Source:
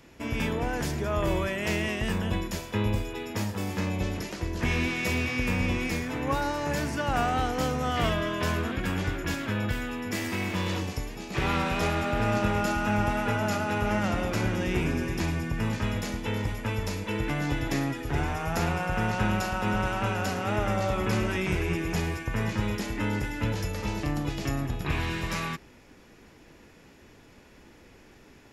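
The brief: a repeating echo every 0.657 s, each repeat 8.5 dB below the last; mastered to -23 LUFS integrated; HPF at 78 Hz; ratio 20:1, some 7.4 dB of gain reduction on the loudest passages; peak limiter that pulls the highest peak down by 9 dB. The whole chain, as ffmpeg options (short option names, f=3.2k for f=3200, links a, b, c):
-af "highpass=78,acompressor=threshold=-29dB:ratio=20,alimiter=level_in=3.5dB:limit=-24dB:level=0:latency=1,volume=-3.5dB,aecho=1:1:657|1314|1971|2628:0.376|0.143|0.0543|0.0206,volume=13dB"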